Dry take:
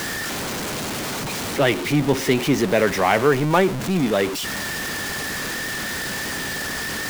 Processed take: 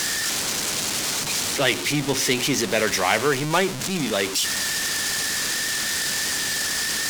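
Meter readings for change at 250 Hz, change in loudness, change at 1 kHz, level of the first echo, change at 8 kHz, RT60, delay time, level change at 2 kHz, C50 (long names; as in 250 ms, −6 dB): −5.5 dB, 0.0 dB, −3.0 dB, no echo audible, +7.5 dB, no reverb audible, no echo audible, 0.0 dB, no reverb audible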